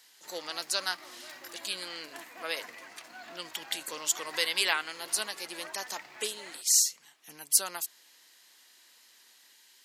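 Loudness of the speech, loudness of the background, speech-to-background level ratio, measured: -30.5 LUFS, -46.5 LUFS, 16.0 dB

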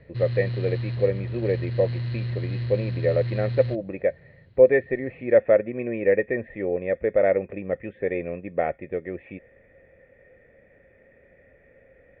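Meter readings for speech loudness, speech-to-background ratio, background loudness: -24.5 LUFS, 5.5 dB, -30.0 LUFS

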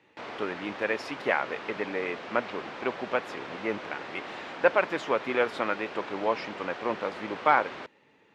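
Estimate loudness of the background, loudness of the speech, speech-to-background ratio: -40.0 LUFS, -30.0 LUFS, 10.0 dB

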